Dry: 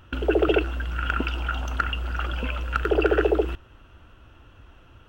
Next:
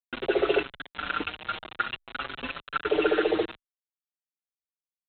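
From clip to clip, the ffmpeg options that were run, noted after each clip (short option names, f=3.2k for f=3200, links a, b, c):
-filter_complex "[0:a]highpass=230,aresample=8000,acrusher=bits=4:mix=0:aa=0.000001,aresample=44100,asplit=2[a][b];[b]adelay=5.8,afreqshift=0.54[c];[a][c]amix=inputs=2:normalize=1"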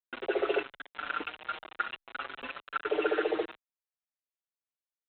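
-af "bass=f=250:g=-13,treble=f=4k:g=-13,volume=-3.5dB"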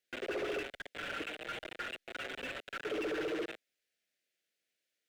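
-filter_complex "[0:a]asuperstop=centerf=1000:order=4:qfactor=0.9,asoftclip=type=hard:threshold=-33.5dB,asplit=2[a][b];[b]highpass=f=720:p=1,volume=25dB,asoftclip=type=tanh:threshold=-33.5dB[c];[a][c]amix=inputs=2:normalize=0,lowpass=f=1.9k:p=1,volume=-6dB,volume=1dB"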